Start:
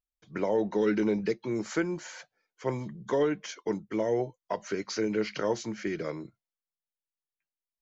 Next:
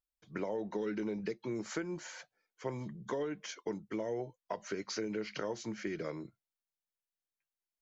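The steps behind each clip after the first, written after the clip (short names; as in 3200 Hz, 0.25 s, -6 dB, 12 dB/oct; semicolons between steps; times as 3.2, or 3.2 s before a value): compressor 5:1, threshold -30 dBFS, peak gain reduction 8 dB; gain -3.5 dB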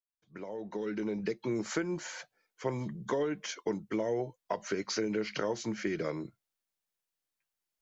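opening faded in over 1.44 s; gain +5 dB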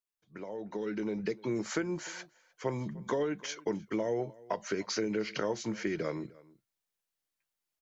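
outdoor echo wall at 52 m, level -22 dB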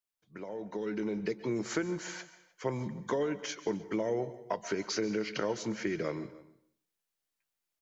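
plate-style reverb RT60 0.53 s, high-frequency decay 0.95×, pre-delay 0.12 s, DRR 14.5 dB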